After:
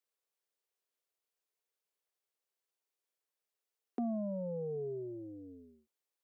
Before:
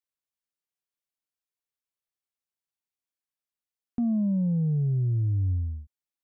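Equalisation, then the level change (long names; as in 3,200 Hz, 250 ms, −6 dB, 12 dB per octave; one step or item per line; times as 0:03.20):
four-pole ladder high-pass 360 Hz, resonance 50%
+10.5 dB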